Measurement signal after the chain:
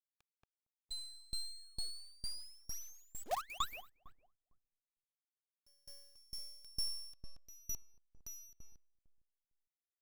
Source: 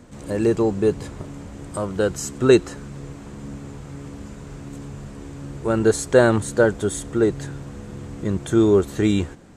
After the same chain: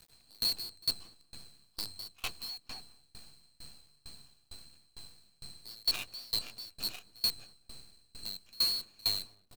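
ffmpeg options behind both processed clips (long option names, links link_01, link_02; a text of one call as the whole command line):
ffmpeg -i in.wav -filter_complex "[0:a]afftfilt=real='real(if(lt(b,736),b+184*(1-2*mod(floor(b/184),2)),b),0)':imag='imag(if(lt(b,736),b+184*(1-2*mod(floor(b/184),2)),b),0)':win_size=2048:overlap=0.75,highpass=frequency=200:width=0.5412,highpass=frequency=200:width=1.3066,tiltshelf=frequency=970:gain=-5,acontrast=63,asplit=3[link_01][link_02][link_03];[link_01]bandpass=frequency=730:width_type=q:width=8,volume=0dB[link_04];[link_02]bandpass=frequency=1090:width_type=q:width=8,volume=-6dB[link_05];[link_03]bandpass=frequency=2440:width_type=q:width=8,volume=-9dB[link_06];[link_04][link_05][link_06]amix=inputs=3:normalize=0,acrusher=bits=6:dc=4:mix=0:aa=0.000001,asplit=2[link_07][link_08];[link_08]adelay=229,lowpass=frequency=850:poles=1,volume=-5.5dB,asplit=2[link_09][link_10];[link_10]adelay=229,lowpass=frequency=850:poles=1,volume=0.39,asplit=2[link_11][link_12];[link_12]adelay=229,lowpass=frequency=850:poles=1,volume=0.39,asplit=2[link_13][link_14];[link_14]adelay=229,lowpass=frequency=850:poles=1,volume=0.39,asplit=2[link_15][link_16];[link_16]adelay=229,lowpass=frequency=850:poles=1,volume=0.39[link_17];[link_07][link_09][link_11][link_13][link_15][link_17]amix=inputs=6:normalize=0,aeval=exprs='val(0)*pow(10,-29*if(lt(mod(2.2*n/s,1),2*abs(2.2)/1000),1-mod(2.2*n/s,1)/(2*abs(2.2)/1000),(mod(2.2*n/s,1)-2*abs(2.2)/1000)/(1-2*abs(2.2)/1000))/20)':channel_layout=same,volume=3dB" out.wav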